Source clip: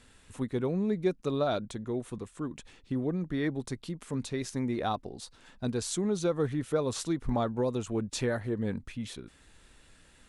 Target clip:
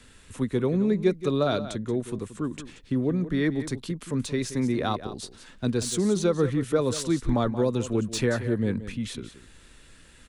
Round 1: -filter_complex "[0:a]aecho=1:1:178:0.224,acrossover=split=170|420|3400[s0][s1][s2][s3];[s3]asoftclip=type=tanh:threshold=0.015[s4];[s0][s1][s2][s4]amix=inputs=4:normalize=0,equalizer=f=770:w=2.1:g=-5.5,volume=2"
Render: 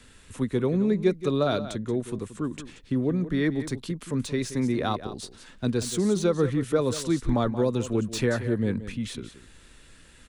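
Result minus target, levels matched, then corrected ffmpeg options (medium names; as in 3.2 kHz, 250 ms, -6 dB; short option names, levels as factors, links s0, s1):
saturation: distortion +6 dB
-filter_complex "[0:a]aecho=1:1:178:0.224,acrossover=split=170|420|3400[s0][s1][s2][s3];[s3]asoftclip=type=tanh:threshold=0.0299[s4];[s0][s1][s2][s4]amix=inputs=4:normalize=0,equalizer=f=770:w=2.1:g=-5.5,volume=2"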